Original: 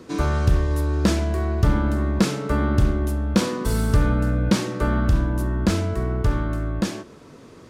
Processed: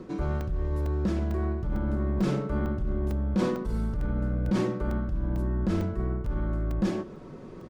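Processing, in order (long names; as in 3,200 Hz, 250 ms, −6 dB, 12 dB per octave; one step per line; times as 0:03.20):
in parallel at −8 dB: gain into a clipping stage and back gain 24 dB
on the sum: comb filter 5.4 ms, depth 41%
brickwall limiter −12 dBFS, peak gain reduction 7.5 dB
spectral tilt −4 dB per octave
reversed playback
downward compressor, threshold −12 dBFS, peak gain reduction 13.5 dB
reversed playback
low-shelf EQ 190 Hz −11 dB
regular buffer underruns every 0.45 s, samples 128, zero, from 0:00.41
level −4.5 dB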